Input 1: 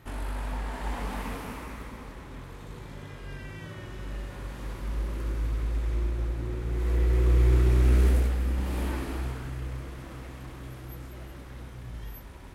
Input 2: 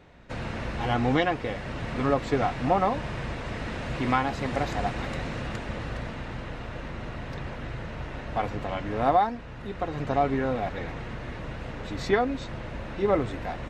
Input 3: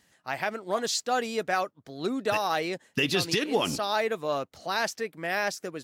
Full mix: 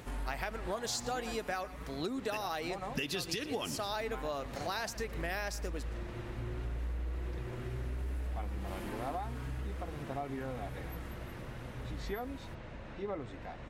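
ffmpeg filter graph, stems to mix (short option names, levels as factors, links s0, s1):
-filter_complex "[0:a]acompressor=threshold=0.0355:ratio=6,asplit=2[s0][s1];[s1]adelay=5.2,afreqshift=0.77[s2];[s0][s2]amix=inputs=2:normalize=1,volume=0.891[s3];[1:a]acompressor=mode=upward:threshold=0.0398:ratio=2.5,volume=0.237,asplit=3[s4][s5][s6];[s4]atrim=end=1.36,asetpts=PTS-STARTPTS,afade=t=out:st=1.356:d=0.004:c=hsin[s7];[s5]atrim=start=1.36:end=2.18,asetpts=PTS-STARTPTS,volume=0[s8];[s6]atrim=start=2.18,asetpts=PTS-STARTPTS,afade=t=in:d=0.004:c=hsin[s9];[s7][s8][s9]concat=n=3:v=0:a=1[s10];[2:a]highshelf=f=7300:g=6.5,volume=1.06,asplit=2[s11][s12];[s12]volume=0.106,aecho=0:1:115:1[s13];[s3][s10][s11][s13]amix=inputs=4:normalize=0,acompressor=threshold=0.02:ratio=6"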